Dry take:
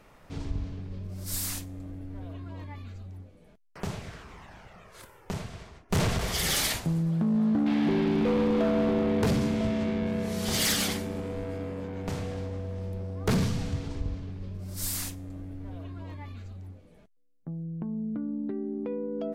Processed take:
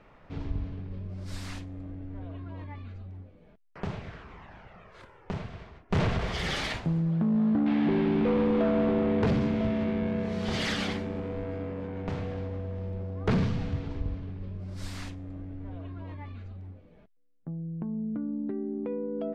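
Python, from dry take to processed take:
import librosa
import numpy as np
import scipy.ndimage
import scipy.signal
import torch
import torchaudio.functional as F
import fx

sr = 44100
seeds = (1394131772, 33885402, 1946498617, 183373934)

y = scipy.signal.sosfilt(scipy.signal.butter(2, 3000.0, 'lowpass', fs=sr, output='sos'), x)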